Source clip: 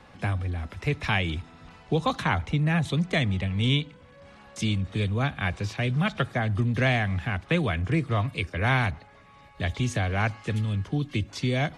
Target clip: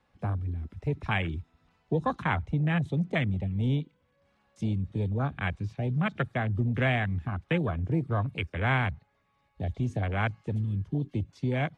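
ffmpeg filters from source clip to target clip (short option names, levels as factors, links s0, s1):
-af "afwtdn=0.0355,volume=0.75"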